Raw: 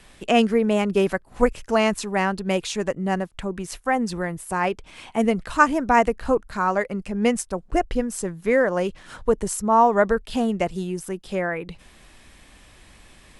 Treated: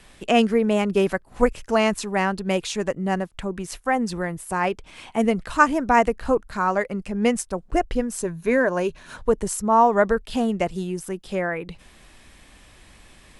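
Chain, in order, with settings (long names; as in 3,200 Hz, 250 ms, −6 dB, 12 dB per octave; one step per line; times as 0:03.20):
0:08.21–0:09.17: EQ curve with evenly spaced ripples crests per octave 1.5, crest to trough 7 dB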